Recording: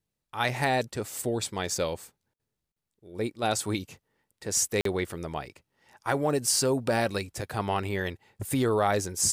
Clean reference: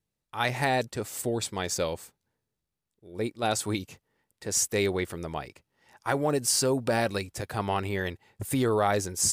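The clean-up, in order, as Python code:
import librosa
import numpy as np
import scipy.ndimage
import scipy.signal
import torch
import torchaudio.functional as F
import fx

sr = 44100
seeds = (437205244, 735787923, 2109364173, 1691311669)

y = fx.fix_interpolate(x, sr, at_s=(2.72, 4.81), length_ms=43.0)
y = fx.fix_interpolate(y, sr, at_s=(2.34,), length_ms=53.0)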